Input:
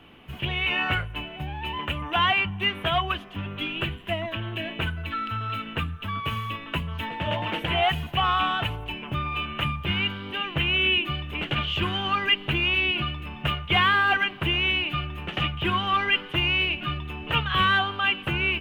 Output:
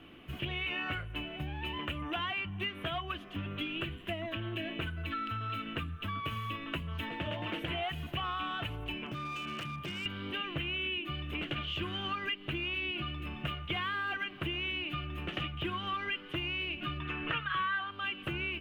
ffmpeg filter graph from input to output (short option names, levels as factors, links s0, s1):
-filter_complex "[0:a]asettb=1/sr,asplit=3[s0][s1][s2];[s0]atrim=end=9.064[s3];[s1]atrim=start=9.06:end=10.06,asetpts=PTS-STARTPTS,afade=t=in:d=0.004:c=qsin,afade=t=out:st=0.996:d=0.004:c=qsin,highpass=f=110:w=0.5412,highpass=f=110:w=1.3066,acompressor=threshold=0.0316:ratio=20:attack=3.2:release=140:knee=1:detection=peak,asoftclip=type=hard:threshold=0.0282[s4];[s2]atrim=start=10.056[s5];[s3][s4]acrossfade=d=0.004:c1=hsin:c2=qsin[s6];[s6][s5]acrossfade=d=0.004:c1=qsin:c2=hsin,asettb=1/sr,asplit=3[s7][s8][s9];[s7]atrim=end=17.004[s10];[s8]atrim=start=17:end=17.91,asetpts=PTS-STARTPTS,afade=t=in:d=0.004:c=qsin,afade=t=out:st=0.906:d=0.004:c=qsin,lowpass=5200,equalizer=f=1500:t=o:w=1.6:g=12,aecho=1:1:6.2:0.36,atrim=end_sample=40131[s11];[s9]atrim=start=17.906[s12];[s10][s11]acrossfade=d=0.004:c1=hsin:c2=qsin[s13];[s13][s12]acrossfade=d=0.004:c1=qsin:c2=hsin,superequalizer=6b=1.78:9b=0.562,acompressor=threshold=0.0316:ratio=5,volume=0.668"